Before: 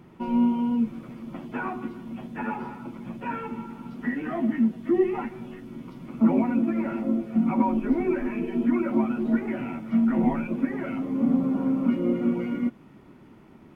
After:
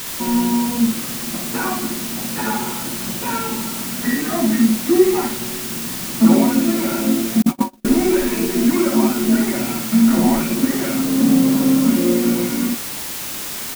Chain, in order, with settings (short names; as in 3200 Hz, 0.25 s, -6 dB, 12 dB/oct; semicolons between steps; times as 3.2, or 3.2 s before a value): downsampling 11025 Hz; requantised 6-bit, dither triangular; early reflections 27 ms -14 dB, 60 ms -3.5 dB, 74 ms -13.5 dB; 7.42–7.85 gate -18 dBFS, range -45 dB; gain +6.5 dB